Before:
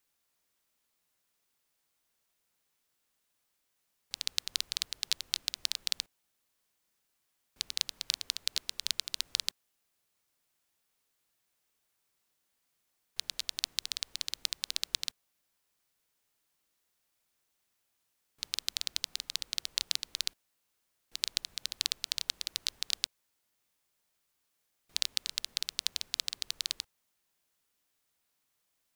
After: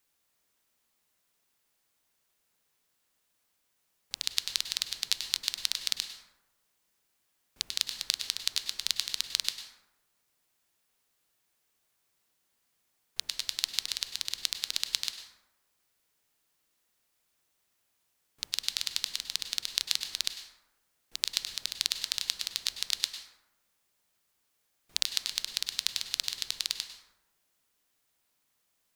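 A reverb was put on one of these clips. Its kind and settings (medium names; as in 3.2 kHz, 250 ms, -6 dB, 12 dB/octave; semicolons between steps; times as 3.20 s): plate-style reverb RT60 1 s, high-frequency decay 0.45×, pre-delay 90 ms, DRR 7.5 dB; trim +2.5 dB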